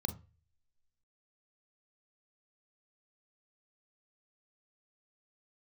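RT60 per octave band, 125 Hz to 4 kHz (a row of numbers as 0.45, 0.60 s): 0.55, 0.30, 0.35, 0.30, 0.45, 0.30 s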